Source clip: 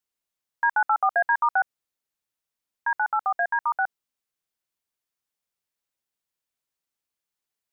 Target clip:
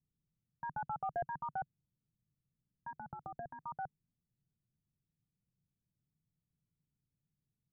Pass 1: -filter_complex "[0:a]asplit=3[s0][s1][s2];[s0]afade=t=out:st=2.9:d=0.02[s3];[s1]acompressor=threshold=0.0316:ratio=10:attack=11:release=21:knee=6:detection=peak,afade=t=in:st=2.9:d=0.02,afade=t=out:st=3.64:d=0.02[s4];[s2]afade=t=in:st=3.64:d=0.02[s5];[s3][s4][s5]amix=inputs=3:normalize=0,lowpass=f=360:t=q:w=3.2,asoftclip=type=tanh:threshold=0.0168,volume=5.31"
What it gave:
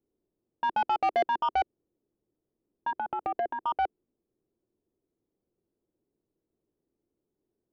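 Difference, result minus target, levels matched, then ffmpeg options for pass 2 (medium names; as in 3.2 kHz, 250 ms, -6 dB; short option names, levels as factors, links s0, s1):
125 Hz band -17.0 dB
-filter_complex "[0:a]asplit=3[s0][s1][s2];[s0]afade=t=out:st=2.9:d=0.02[s3];[s1]acompressor=threshold=0.0316:ratio=10:attack=11:release=21:knee=6:detection=peak,afade=t=in:st=2.9:d=0.02,afade=t=out:st=3.64:d=0.02[s4];[s2]afade=t=in:st=3.64:d=0.02[s5];[s3][s4][s5]amix=inputs=3:normalize=0,lowpass=f=150:t=q:w=3.2,asoftclip=type=tanh:threshold=0.0168,volume=5.31"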